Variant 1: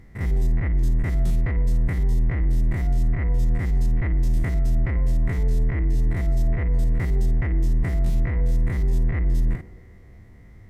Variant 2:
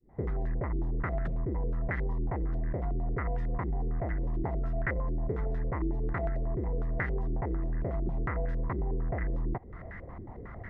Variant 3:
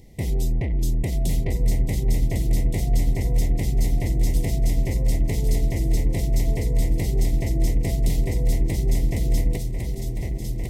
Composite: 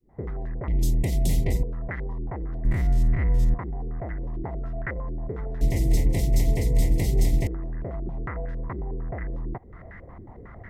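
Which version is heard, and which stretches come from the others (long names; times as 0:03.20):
2
0:00.68–0:01.63: punch in from 3
0:02.65–0:03.54: punch in from 1
0:05.61–0:07.47: punch in from 3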